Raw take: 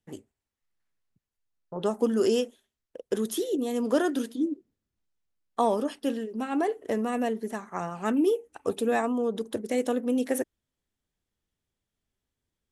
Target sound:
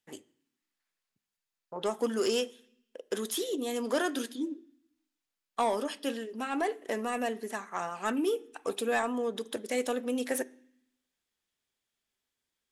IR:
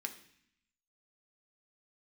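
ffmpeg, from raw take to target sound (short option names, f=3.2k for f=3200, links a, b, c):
-filter_complex "[0:a]highshelf=f=4.5k:g=11.5,asplit=2[a][b];[b]highpass=f=720:p=1,volume=13dB,asoftclip=type=tanh:threshold=-9.5dB[c];[a][c]amix=inputs=2:normalize=0,lowpass=f=4.8k:p=1,volume=-6dB,asplit=2[d][e];[1:a]atrim=start_sample=2205,lowpass=6.2k[f];[e][f]afir=irnorm=-1:irlink=0,volume=-7dB[g];[d][g]amix=inputs=2:normalize=0,volume=-9dB"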